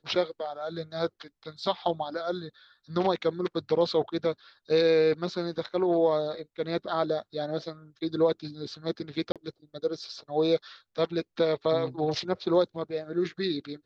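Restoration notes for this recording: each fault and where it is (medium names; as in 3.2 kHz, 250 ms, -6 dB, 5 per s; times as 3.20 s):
9.32–9.36 s: dropout 37 ms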